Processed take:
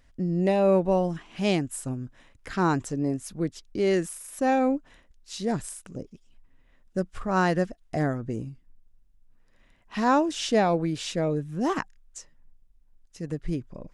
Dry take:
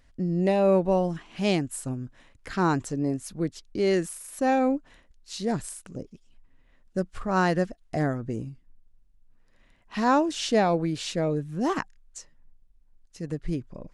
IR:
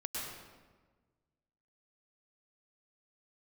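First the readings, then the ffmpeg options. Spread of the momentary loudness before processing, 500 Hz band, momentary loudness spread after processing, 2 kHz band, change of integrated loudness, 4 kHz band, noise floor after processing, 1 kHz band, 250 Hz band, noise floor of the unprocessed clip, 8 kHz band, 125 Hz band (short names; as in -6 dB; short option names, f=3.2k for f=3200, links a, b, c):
16 LU, 0.0 dB, 16 LU, 0.0 dB, 0.0 dB, -0.5 dB, -61 dBFS, 0.0 dB, 0.0 dB, -61 dBFS, 0.0 dB, 0.0 dB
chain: -af "bandreject=f=4.3k:w=19"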